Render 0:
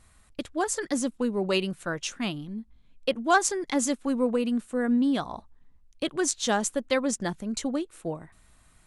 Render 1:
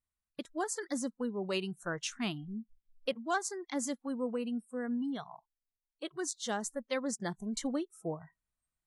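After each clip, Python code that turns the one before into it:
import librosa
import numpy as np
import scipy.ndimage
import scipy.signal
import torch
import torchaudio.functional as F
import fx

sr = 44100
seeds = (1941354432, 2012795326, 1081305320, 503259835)

y = fx.rider(x, sr, range_db=4, speed_s=0.5)
y = fx.noise_reduce_blind(y, sr, reduce_db=28)
y = F.gain(torch.from_numpy(y), -8.5).numpy()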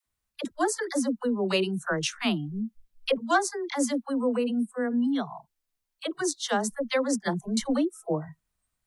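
y = fx.dynamic_eq(x, sr, hz=7200.0, q=3.3, threshold_db=-55.0, ratio=4.0, max_db=-6)
y = fx.dispersion(y, sr, late='lows', ms=67.0, hz=460.0)
y = F.gain(torch.from_numpy(y), 9.0).numpy()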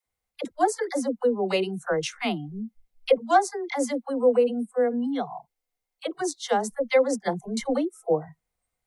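y = fx.small_body(x, sr, hz=(500.0, 740.0, 2100.0), ring_ms=30, db=12)
y = F.gain(torch.from_numpy(y), -3.0).numpy()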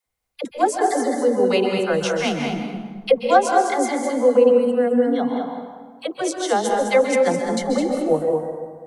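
y = x + 10.0 ** (-7.0 / 20.0) * np.pad(x, (int(210 * sr / 1000.0), 0))[:len(x)]
y = fx.rev_plate(y, sr, seeds[0], rt60_s=1.5, hf_ratio=0.6, predelay_ms=120, drr_db=3.5)
y = F.gain(torch.from_numpy(y), 3.5).numpy()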